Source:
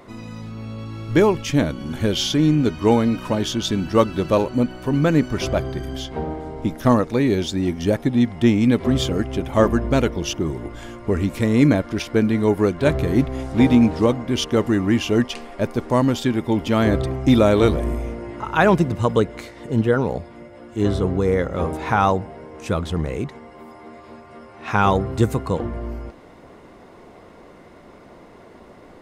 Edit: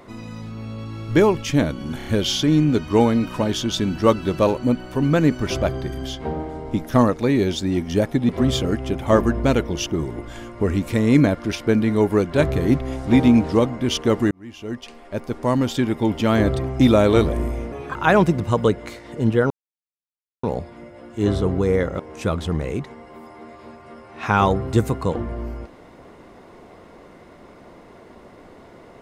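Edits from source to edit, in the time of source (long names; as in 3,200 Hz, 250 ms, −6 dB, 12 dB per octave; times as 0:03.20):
0:01.97: stutter 0.03 s, 4 plays
0:08.20–0:08.76: remove
0:14.78–0:16.31: fade in
0:18.19–0:18.47: play speed 120%
0:20.02: splice in silence 0.93 s
0:21.58–0:22.44: remove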